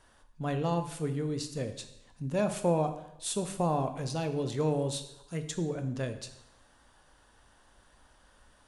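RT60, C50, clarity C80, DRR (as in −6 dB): 0.85 s, 10.5 dB, 13.0 dB, 7.5 dB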